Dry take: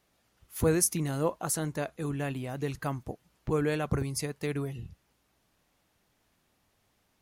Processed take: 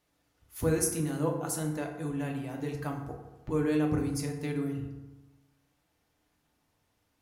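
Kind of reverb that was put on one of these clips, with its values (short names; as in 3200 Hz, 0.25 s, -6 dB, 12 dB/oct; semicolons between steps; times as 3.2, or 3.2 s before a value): FDN reverb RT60 1.1 s, low-frequency decay 1.1×, high-frequency decay 0.5×, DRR 1 dB; gain -5.5 dB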